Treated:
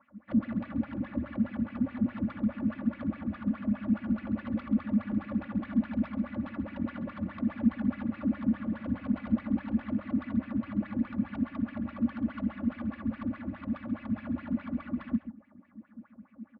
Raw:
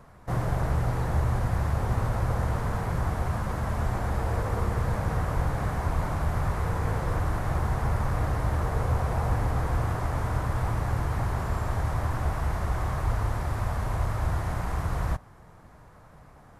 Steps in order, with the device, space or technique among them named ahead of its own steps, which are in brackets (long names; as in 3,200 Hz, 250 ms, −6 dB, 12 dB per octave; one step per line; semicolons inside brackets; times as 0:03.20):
Bessel low-pass filter 2,400 Hz
wah-wah guitar rig (LFO wah 4.8 Hz 210–2,700 Hz, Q 6.6; tube saturation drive 40 dB, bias 0.5; loudspeaker in its box 100–4,300 Hz, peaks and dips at 150 Hz −8 dB, 380 Hz −8 dB, 570 Hz +8 dB, 880 Hz −7 dB)
low shelf with overshoot 330 Hz +13 dB, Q 3
comb filter 3.5 ms, depth 74%
single-tap delay 135 ms −12.5 dB
level +4.5 dB